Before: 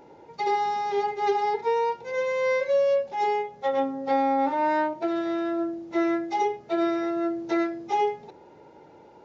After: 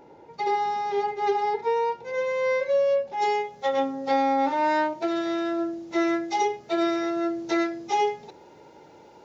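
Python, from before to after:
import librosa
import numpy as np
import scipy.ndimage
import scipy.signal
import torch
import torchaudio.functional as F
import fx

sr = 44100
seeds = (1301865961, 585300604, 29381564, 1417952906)

y = fx.high_shelf(x, sr, hz=3200.0, db=fx.steps((0.0, -2.0), (3.21, 11.5)))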